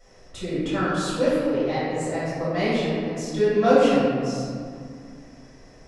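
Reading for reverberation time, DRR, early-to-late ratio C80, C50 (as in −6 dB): 2.2 s, −13.0 dB, −0.5 dB, −3.5 dB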